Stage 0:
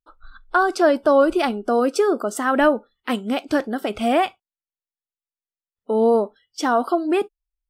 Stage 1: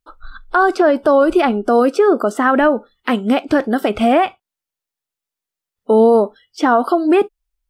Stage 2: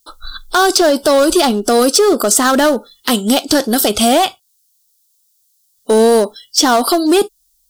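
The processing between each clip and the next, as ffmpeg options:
ffmpeg -i in.wav -filter_complex "[0:a]acrossover=split=2900[link_01][link_02];[link_02]acompressor=threshold=-46dB:ratio=6[link_03];[link_01][link_03]amix=inputs=2:normalize=0,alimiter=limit=-13.5dB:level=0:latency=1:release=163,volume=9dB" out.wav
ffmpeg -i in.wav -filter_complex "[0:a]asplit=2[link_01][link_02];[link_02]asoftclip=type=hard:threshold=-14dB,volume=-7dB[link_03];[link_01][link_03]amix=inputs=2:normalize=0,aexciter=amount=8.3:drive=7.9:freq=3500,asoftclip=type=tanh:threshold=-2dB" out.wav

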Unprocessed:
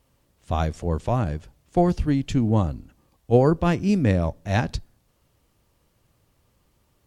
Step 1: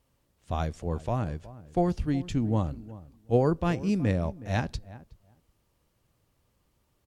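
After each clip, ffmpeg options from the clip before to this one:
ffmpeg -i in.wav -filter_complex "[0:a]asplit=2[link_01][link_02];[link_02]adelay=368,lowpass=frequency=1200:poles=1,volume=-17dB,asplit=2[link_03][link_04];[link_04]adelay=368,lowpass=frequency=1200:poles=1,volume=0.15[link_05];[link_01][link_03][link_05]amix=inputs=3:normalize=0,volume=-6dB" out.wav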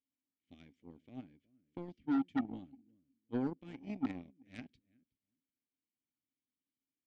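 ffmpeg -i in.wav -filter_complex "[0:a]asplit=3[link_01][link_02][link_03];[link_01]bandpass=frequency=270:width_type=q:width=8,volume=0dB[link_04];[link_02]bandpass=frequency=2290:width_type=q:width=8,volume=-6dB[link_05];[link_03]bandpass=frequency=3010:width_type=q:width=8,volume=-9dB[link_06];[link_04][link_05][link_06]amix=inputs=3:normalize=0,aeval=exprs='0.075*(cos(1*acos(clip(val(0)/0.075,-1,1)))-cos(1*PI/2))+0.0188*(cos(5*acos(clip(val(0)/0.075,-1,1)))-cos(5*PI/2))+0.0211*(cos(7*acos(clip(val(0)/0.075,-1,1)))-cos(7*PI/2))':channel_layout=same,volume=-2.5dB" out.wav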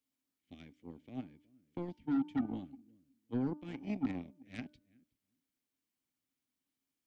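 ffmpeg -i in.wav -filter_complex "[0:a]bandreject=frequency=298.9:width_type=h:width=4,bandreject=frequency=597.8:width_type=h:width=4,bandreject=frequency=896.7:width_type=h:width=4,bandreject=frequency=1195.6:width_type=h:width=4,bandreject=frequency=1494.5:width_type=h:width=4,acrossover=split=230[link_01][link_02];[link_02]alimiter=level_in=13.5dB:limit=-24dB:level=0:latency=1:release=43,volume=-13.5dB[link_03];[link_01][link_03]amix=inputs=2:normalize=0,volume=5dB" out.wav

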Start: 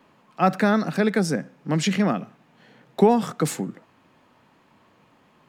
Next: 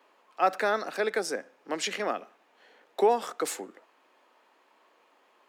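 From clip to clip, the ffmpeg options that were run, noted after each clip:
ffmpeg -i in.wav -af "highpass=frequency=370:width=0.5412,highpass=frequency=370:width=1.3066,volume=-3.5dB" out.wav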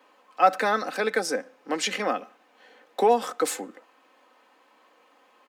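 ffmpeg -i in.wav -af "lowshelf=frequency=110:gain=6,aecho=1:1:3.9:0.52,volume=3dB" out.wav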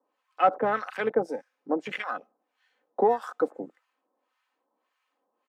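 ffmpeg -i in.wav -filter_complex "[0:a]afwtdn=0.0355,acrossover=split=1000[link_01][link_02];[link_01]aeval=exprs='val(0)*(1-1/2+1/2*cos(2*PI*1.7*n/s))':channel_layout=same[link_03];[link_02]aeval=exprs='val(0)*(1-1/2-1/2*cos(2*PI*1.7*n/s))':channel_layout=same[link_04];[link_03][link_04]amix=inputs=2:normalize=0,volume=3dB" out.wav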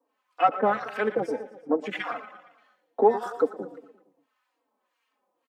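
ffmpeg -i in.wav -filter_complex "[0:a]aecho=1:1:116|232|348|464|580:0.2|0.106|0.056|0.0297|0.0157,asplit=2[link_01][link_02];[link_02]adelay=3.8,afreqshift=-2.4[link_03];[link_01][link_03]amix=inputs=2:normalize=1,volume=4.5dB" out.wav

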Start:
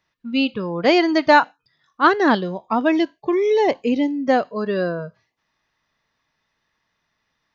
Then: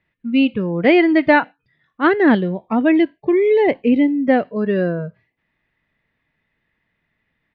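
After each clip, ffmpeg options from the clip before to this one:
ffmpeg -i in.wav -af "firequalizer=gain_entry='entry(190,0);entry(1100,-13);entry(2000,-1);entry(5700,-28)':delay=0.05:min_phase=1,volume=6.5dB" out.wav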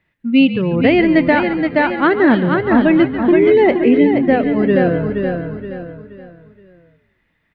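ffmpeg -i in.wav -filter_complex "[0:a]asplit=2[link_01][link_02];[link_02]aecho=0:1:473|946|1419|1892:0.501|0.18|0.065|0.0234[link_03];[link_01][link_03]amix=inputs=2:normalize=0,alimiter=limit=-7dB:level=0:latency=1:release=411,asplit=2[link_04][link_05];[link_05]asplit=5[link_06][link_07][link_08][link_09][link_10];[link_06]adelay=141,afreqshift=-56,volume=-12.5dB[link_11];[link_07]adelay=282,afreqshift=-112,volume=-19.2dB[link_12];[link_08]adelay=423,afreqshift=-168,volume=-26dB[link_13];[link_09]adelay=564,afreqshift=-224,volume=-32.7dB[link_14];[link_10]adelay=705,afreqshift=-280,volume=-39.5dB[link_15];[link_11][link_12][link_13][link_14][link_15]amix=inputs=5:normalize=0[link_16];[link_04][link_16]amix=inputs=2:normalize=0,volume=4dB" out.wav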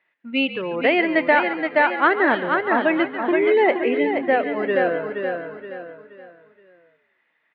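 ffmpeg -i in.wav -af "highpass=560,lowpass=3200" out.wav

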